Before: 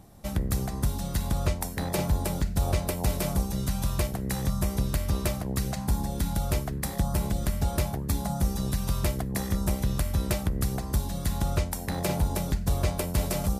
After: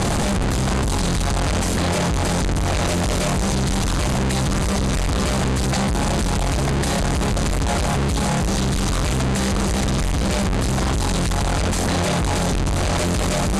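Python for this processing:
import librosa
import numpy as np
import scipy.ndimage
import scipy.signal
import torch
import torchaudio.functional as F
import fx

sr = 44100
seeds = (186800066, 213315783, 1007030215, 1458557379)

y = np.sign(x) * np.sqrt(np.mean(np.square(x)))
y = scipy.signal.sosfilt(scipy.signal.butter(4, 8900.0, 'lowpass', fs=sr, output='sos'), y)
y = fx.notch(y, sr, hz=5500.0, q=16.0)
y = y * 10.0 ** (8.0 / 20.0)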